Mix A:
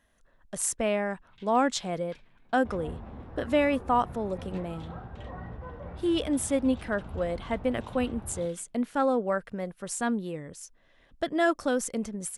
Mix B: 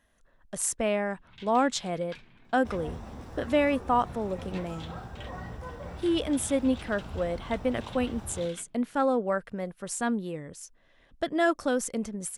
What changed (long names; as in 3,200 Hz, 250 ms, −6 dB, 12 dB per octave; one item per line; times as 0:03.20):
first sound +8.5 dB
second sound: remove high-frequency loss of the air 480 metres